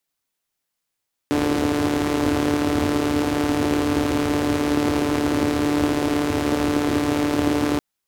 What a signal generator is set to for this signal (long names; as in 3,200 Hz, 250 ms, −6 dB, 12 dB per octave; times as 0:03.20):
pulse-train model of a four-cylinder engine, steady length 6.48 s, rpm 4,400, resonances 95/280 Hz